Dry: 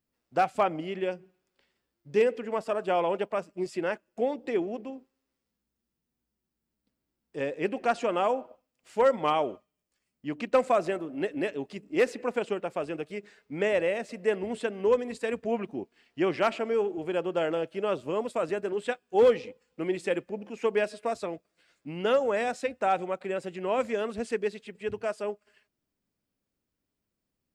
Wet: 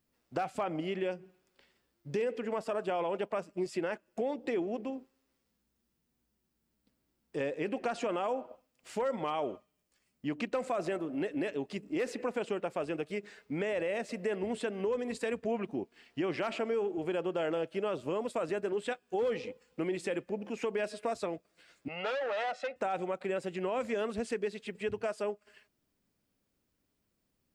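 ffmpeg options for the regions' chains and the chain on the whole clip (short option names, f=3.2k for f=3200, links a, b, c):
-filter_complex "[0:a]asettb=1/sr,asplit=3[a][b][c];[a]atrim=end=21.884[d];[b]atrim=start=21.88:end=22.76,asetpts=PTS-STARTPTS,afade=t=in:d=0.004:c=qsin,afade=t=out:st=0.876:d=0.004:c=qsin,aecho=1:1:1.5:0.9,atrim=end_sample=38808,volume=28.5dB,asoftclip=hard,volume=-28.5dB,highpass=470,lowpass=3.2k[e];[c]atrim=start=22.756[f];[d][e]acrossfade=d=0.004:c1=hsin:c2=qsin[g];[g][f]acrossfade=d=0.004:c1=qsin:c2=hsin,alimiter=limit=-21.5dB:level=0:latency=1:release=21,acompressor=threshold=-40dB:ratio=2,volume=4.5dB"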